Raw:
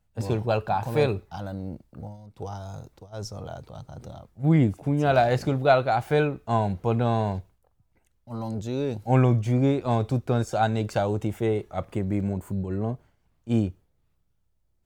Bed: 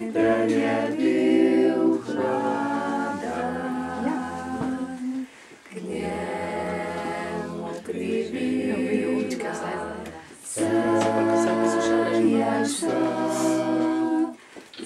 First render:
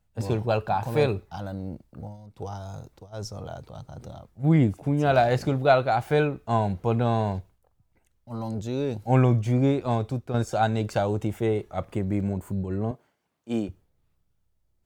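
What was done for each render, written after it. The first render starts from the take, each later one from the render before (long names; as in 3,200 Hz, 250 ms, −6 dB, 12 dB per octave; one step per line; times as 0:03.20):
0:09.81–0:10.34: fade out, to −8 dB
0:12.91–0:13.69: high-pass filter 250 Hz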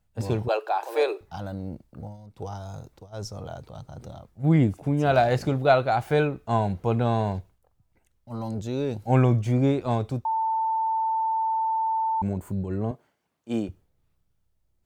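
0:00.48–0:01.21: Butterworth high-pass 330 Hz 72 dB per octave
0:10.25–0:12.22: beep over 891 Hz −22 dBFS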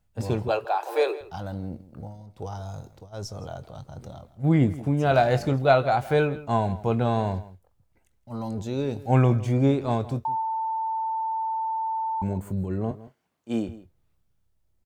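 double-tracking delay 22 ms −14 dB
slap from a distant wall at 28 metres, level −17 dB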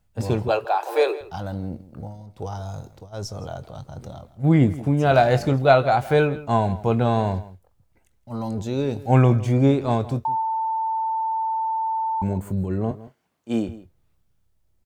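level +3.5 dB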